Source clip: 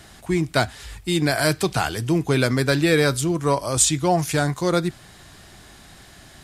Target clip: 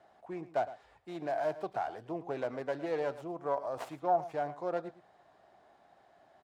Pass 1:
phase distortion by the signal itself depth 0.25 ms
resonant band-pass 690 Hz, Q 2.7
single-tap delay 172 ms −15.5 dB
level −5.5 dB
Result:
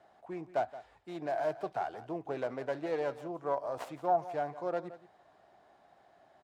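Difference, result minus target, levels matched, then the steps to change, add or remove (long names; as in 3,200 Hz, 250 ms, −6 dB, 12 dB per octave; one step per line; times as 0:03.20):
echo 62 ms late
change: single-tap delay 110 ms −15.5 dB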